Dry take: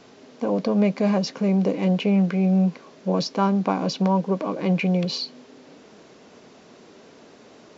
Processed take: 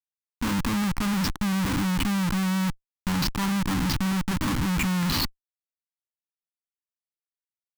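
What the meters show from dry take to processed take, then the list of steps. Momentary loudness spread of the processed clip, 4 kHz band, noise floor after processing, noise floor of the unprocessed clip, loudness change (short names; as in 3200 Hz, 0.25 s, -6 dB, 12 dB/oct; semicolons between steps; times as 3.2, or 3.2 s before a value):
4 LU, +2.0 dB, under -85 dBFS, -50 dBFS, -3.5 dB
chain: Schmitt trigger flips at -27 dBFS; band shelf 520 Hz -13 dB 1.1 oct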